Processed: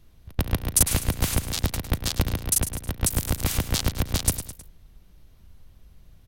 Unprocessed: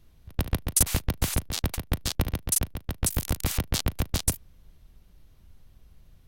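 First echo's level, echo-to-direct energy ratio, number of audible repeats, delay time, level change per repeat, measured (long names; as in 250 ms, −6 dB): −11.0 dB, −10.0 dB, 3, 105 ms, −6.5 dB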